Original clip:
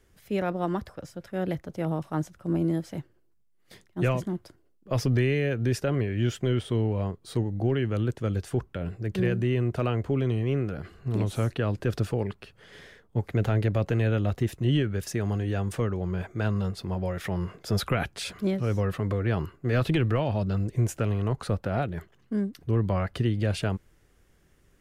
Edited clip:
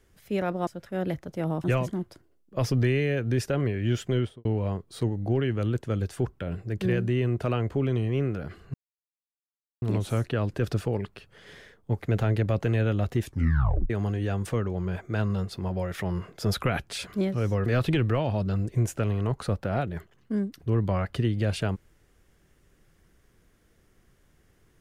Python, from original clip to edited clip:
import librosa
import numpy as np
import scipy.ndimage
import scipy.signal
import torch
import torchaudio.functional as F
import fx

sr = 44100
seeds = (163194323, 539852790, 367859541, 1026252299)

y = fx.studio_fade_out(x, sr, start_s=6.51, length_s=0.28)
y = fx.edit(y, sr, fx.cut(start_s=0.67, length_s=0.41),
    fx.cut(start_s=2.05, length_s=1.93),
    fx.insert_silence(at_s=11.08, length_s=1.08),
    fx.tape_stop(start_s=14.49, length_s=0.67),
    fx.cut(start_s=18.92, length_s=0.75), tone=tone)